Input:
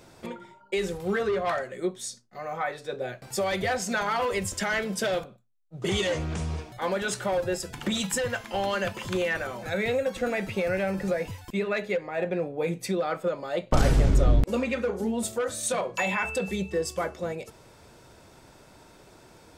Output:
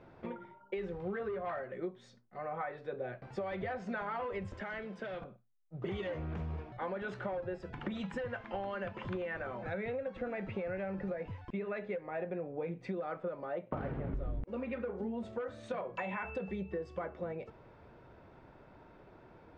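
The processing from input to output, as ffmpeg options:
-filter_complex "[0:a]asettb=1/sr,asplit=3[s0][s1][s2];[s0]atrim=end=4.564[s3];[s1]atrim=start=4.56:end=5.22,asetpts=PTS-STARTPTS,afade=t=in:d=0.004:c=qsin,afade=t=out:st=0.656:d=0.004:c=qsin,acrossover=split=290|1000|2200[s4][s5][s6][s7];[s4]acompressor=threshold=0.00447:ratio=3[s8];[s5]acompressor=threshold=0.00708:ratio=3[s9];[s6]acompressor=threshold=0.00631:ratio=3[s10];[s7]acompressor=threshold=0.01:ratio=3[s11];[s8][s9][s10][s11]amix=inputs=4:normalize=0[s12];[s2]atrim=start=5.216[s13];[s3][s12]acrossfade=d=0.004:c1=hsin:c2=qsin[s14];[s14][s13]acrossfade=d=0.004:c1=qsin:c2=hsin,asettb=1/sr,asplit=3[s15][s16][s17];[s15]atrim=end=13.454[s18];[s16]atrim=start=13.45:end=14.14,asetpts=PTS-STARTPTS,afade=t=in:d=0.004:c=qsin,afade=t=out:st=0.686:d=0.004:c=qsin,highpass=110,lowpass=2700[s19];[s17]atrim=start=14.136[s20];[s18][s19]acrossfade=d=0.004:c1=hsin:c2=qsin[s21];[s21][s20]acrossfade=d=0.004:c1=qsin:c2=hsin,lowpass=2200,aemphasis=mode=reproduction:type=50fm,acompressor=threshold=0.0282:ratio=6,volume=0.631"

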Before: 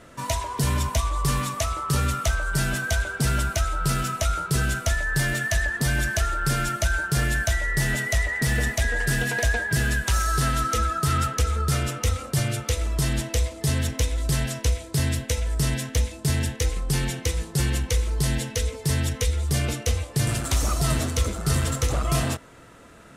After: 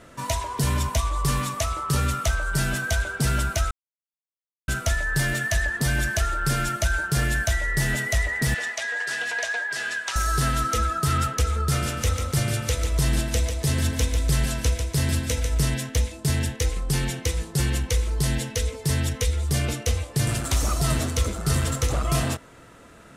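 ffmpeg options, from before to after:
-filter_complex "[0:a]asettb=1/sr,asplit=3[s0][s1][s2];[s0]atrim=end=8.544[s3];[s1]atrim=start=8.54:end=10.16,asetpts=PTS-STARTPTS,afade=t=in:d=0.004:c=qsin,afade=t=out:st=1.616:d=0.004:c=qsin,highpass=740,lowpass=6500[s4];[s2]atrim=start=10.156[s5];[s3][s4]acrossfade=d=0.004:c1=hsin:c2=qsin[s6];[s6][s5]acrossfade=d=0.004:c1=qsin:c2=hsin,asettb=1/sr,asplit=3[s7][s8][s9];[s7]atrim=end=11.624[s10];[s8]atrim=start=11.62:end=15.65,asetpts=PTS-STARTPTS,afade=t=in:d=0.004:c=qsin,afade=t=out:st=4.026:d=0.004:c=qsin,aecho=1:1:145|290|435|580:0.473|0.166|0.058|0.0203,atrim=end_sample=177723[s11];[s9]atrim=start=15.646[s12];[s10][s11]acrossfade=d=0.004:c1=hsin:c2=qsin[s13];[s13][s12]acrossfade=d=0.004:c1=qsin:c2=hsin,asplit=3[s14][s15][s16];[s14]atrim=end=3.71,asetpts=PTS-STARTPTS,afade=t=out:st=3.706:d=0.004:c=hsin[s17];[s15]atrim=start=3.71:end=4.68,asetpts=PTS-STARTPTS,volume=0[s18];[s16]atrim=start=4.68,asetpts=PTS-STARTPTS,afade=t=in:d=0.004:c=hsin[s19];[s17][s18][s19]concat=n=3:v=0:a=1"

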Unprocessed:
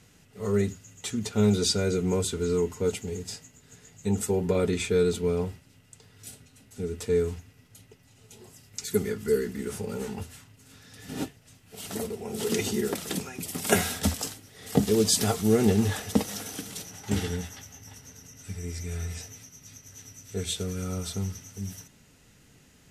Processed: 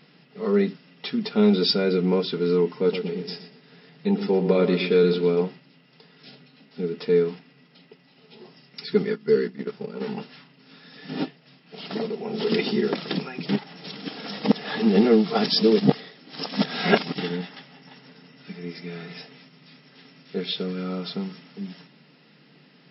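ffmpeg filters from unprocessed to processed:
-filter_complex "[0:a]asettb=1/sr,asplit=3[s0][s1][s2];[s0]atrim=end=2.734[s3];[s1]atrim=start=2.73:end=5.41,asetpts=PTS-STARTPTS,afade=t=in:d=0.004:c=qsin,afade=t=out:st=2.676:d=0.004:c=qsin,asplit=2[s4][s5];[s5]adelay=118,lowpass=f=3600:p=1,volume=0.355,asplit=2[s6][s7];[s7]adelay=118,lowpass=f=3600:p=1,volume=0.37,asplit=2[s8][s9];[s9]adelay=118,lowpass=f=3600:p=1,volume=0.37,asplit=2[s10][s11];[s11]adelay=118,lowpass=f=3600:p=1,volume=0.37[s12];[s4][s6][s8][s10][s12]amix=inputs=5:normalize=0,atrim=end_sample=118188[s13];[s2]atrim=start=5.406[s14];[s3][s13]acrossfade=d=0.004:c1=hsin:c2=qsin[s15];[s15][s14]acrossfade=d=0.004:c1=qsin:c2=hsin,asplit=3[s16][s17][s18];[s16]afade=t=out:st=9.02:d=0.02[s19];[s17]agate=range=0.251:threshold=0.0224:ratio=16:release=100:detection=peak,afade=t=in:st=9.02:d=0.02,afade=t=out:st=10:d=0.02[s20];[s18]afade=t=in:st=10:d=0.02[s21];[s19][s20][s21]amix=inputs=3:normalize=0,asplit=3[s22][s23][s24];[s22]atrim=end=13.492[s25];[s23]atrim=start=13.488:end=17.182,asetpts=PTS-STARTPTS,areverse[s26];[s24]atrim=start=17.178[s27];[s25][s26]acrossfade=d=0.004:c1=hsin:c2=hsin[s28];[s28][s27]acrossfade=d=0.004:c1=hsin:c2=hsin,bandreject=f=1500:w=28,afftfilt=real='re*between(b*sr/4096,130,5500)':imag='im*between(b*sr/4096,130,5500)':win_size=4096:overlap=0.75,acontrast=28"

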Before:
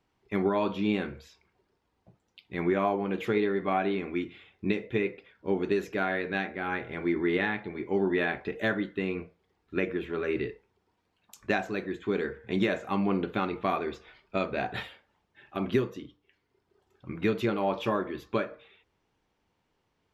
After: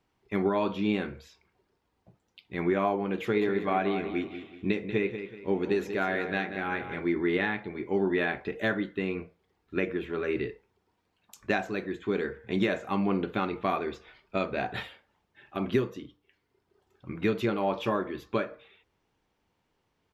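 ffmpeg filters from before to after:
-filter_complex "[0:a]asplit=3[s0][s1][s2];[s0]afade=t=out:st=3.4:d=0.02[s3];[s1]aecho=1:1:188|376|564|752:0.316|0.117|0.0433|0.016,afade=t=in:st=3.4:d=0.02,afade=t=out:st=7:d=0.02[s4];[s2]afade=t=in:st=7:d=0.02[s5];[s3][s4][s5]amix=inputs=3:normalize=0"

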